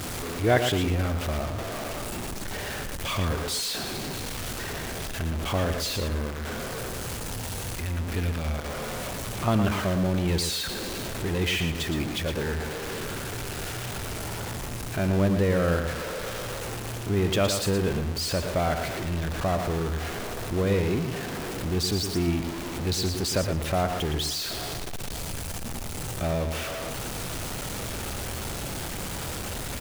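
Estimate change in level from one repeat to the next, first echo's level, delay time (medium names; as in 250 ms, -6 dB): -13.0 dB, -7.5 dB, 115 ms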